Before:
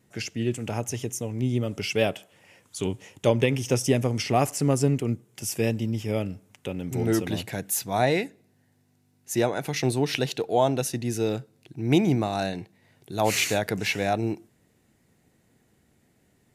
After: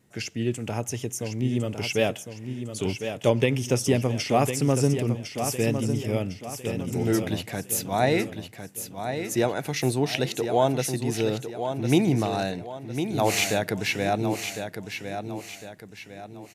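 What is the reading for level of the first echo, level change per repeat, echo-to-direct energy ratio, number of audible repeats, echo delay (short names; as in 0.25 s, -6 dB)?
-8.0 dB, -8.0 dB, -7.5 dB, 4, 1.055 s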